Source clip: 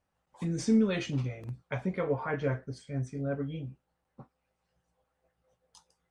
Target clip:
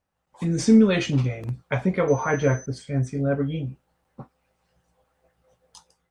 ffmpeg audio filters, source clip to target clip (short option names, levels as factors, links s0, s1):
-filter_complex "[0:a]dynaudnorm=f=160:g=5:m=2.99,asettb=1/sr,asplit=3[s0][s1][s2];[s0]atrim=end=2.084[s3];[s1]atrim=start=2.08:end=2.66,asetpts=PTS-STARTPTS,afade=t=in:d=0.004:c=qsin,afade=t=out:st=0.576:d=0.004:c=qsin,aeval=exprs='val(0)+0.00794*sin(2*PI*6100*n/s)':c=same[s4];[s2]atrim=start=2.656[s5];[s3][s4]acrossfade=d=0.004:c1=hsin:c2=qsin[s6];[s6][s5]acrossfade=d=0.004:c1=qsin:c2=hsin"